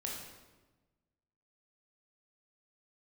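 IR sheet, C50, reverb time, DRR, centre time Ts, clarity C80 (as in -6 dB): 2.0 dB, 1.2 s, -2.5 dB, 59 ms, 4.5 dB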